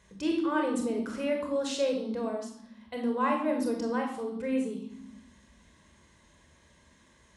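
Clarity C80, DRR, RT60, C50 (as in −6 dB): 9.0 dB, 1.5 dB, 0.90 s, 5.0 dB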